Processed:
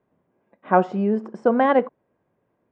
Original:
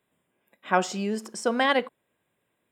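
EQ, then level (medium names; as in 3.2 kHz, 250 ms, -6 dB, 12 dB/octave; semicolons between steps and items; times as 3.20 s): low-pass 1 kHz 12 dB/octave; +7.5 dB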